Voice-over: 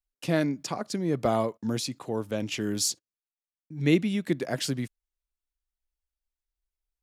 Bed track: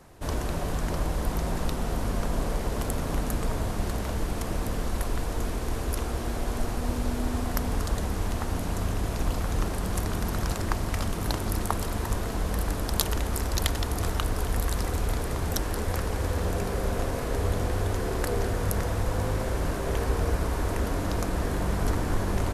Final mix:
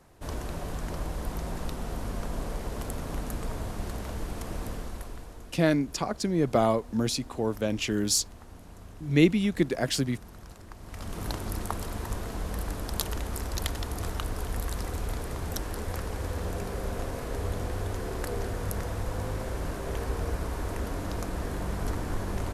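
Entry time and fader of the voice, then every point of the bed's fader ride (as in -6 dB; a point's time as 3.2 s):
5.30 s, +2.0 dB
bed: 4.69 s -5.5 dB
5.56 s -18.5 dB
10.75 s -18.5 dB
11.18 s -5 dB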